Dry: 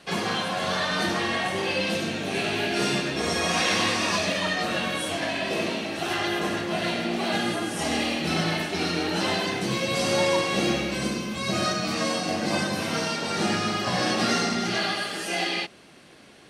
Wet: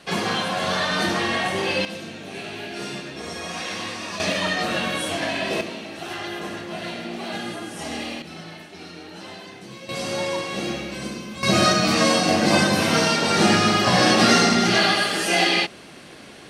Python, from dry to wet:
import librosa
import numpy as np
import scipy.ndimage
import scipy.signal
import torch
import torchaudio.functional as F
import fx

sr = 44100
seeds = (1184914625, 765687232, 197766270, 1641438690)

y = fx.gain(x, sr, db=fx.steps((0.0, 3.0), (1.85, -7.0), (4.2, 2.5), (5.61, -4.5), (8.22, -13.0), (9.89, -3.5), (11.43, 8.0)))